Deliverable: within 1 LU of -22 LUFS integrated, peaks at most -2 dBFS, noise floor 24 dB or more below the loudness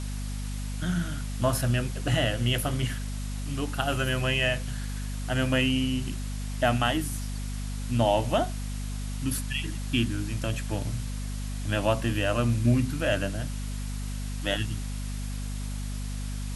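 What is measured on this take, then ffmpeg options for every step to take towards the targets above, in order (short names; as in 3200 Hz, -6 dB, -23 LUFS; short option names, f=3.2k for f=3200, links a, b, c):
hum 50 Hz; harmonics up to 250 Hz; hum level -30 dBFS; noise floor -33 dBFS; noise floor target -53 dBFS; loudness -29.0 LUFS; peak -10.5 dBFS; loudness target -22.0 LUFS
-> -af "bandreject=f=50:t=h:w=6,bandreject=f=100:t=h:w=6,bandreject=f=150:t=h:w=6,bandreject=f=200:t=h:w=6,bandreject=f=250:t=h:w=6"
-af "afftdn=nr=20:nf=-33"
-af "volume=7dB"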